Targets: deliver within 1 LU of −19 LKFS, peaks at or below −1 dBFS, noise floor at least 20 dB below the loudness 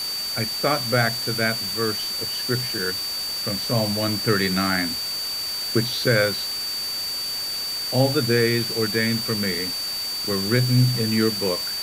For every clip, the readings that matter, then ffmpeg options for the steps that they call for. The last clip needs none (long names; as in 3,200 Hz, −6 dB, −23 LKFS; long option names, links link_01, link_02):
interfering tone 4,600 Hz; level of the tone −26 dBFS; background noise floor −28 dBFS; target noise floor −42 dBFS; integrated loudness −22.0 LKFS; sample peak −6.0 dBFS; target loudness −19.0 LKFS
→ -af "bandreject=frequency=4600:width=30"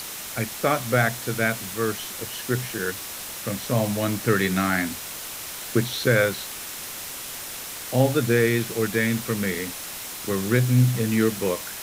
interfering tone none found; background noise floor −35 dBFS; target noise floor −45 dBFS
→ -af "afftdn=noise_reduction=10:noise_floor=-35"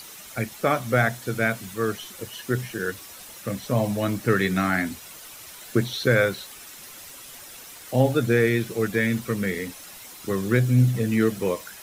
background noise floor −43 dBFS; target noise floor −44 dBFS
→ -af "afftdn=noise_reduction=6:noise_floor=-43"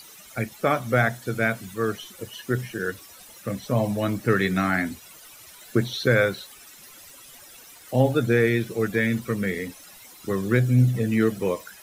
background noise floor −48 dBFS; integrated loudness −24.0 LKFS; sample peak −7.0 dBFS; target loudness −19.0 LKFS
→ -af "volume=5dB"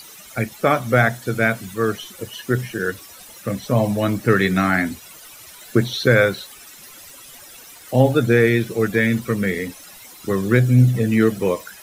integrated loudness −19.0 LKFS; sample peak −2.0 dBFS; background noise floor −43 dBFS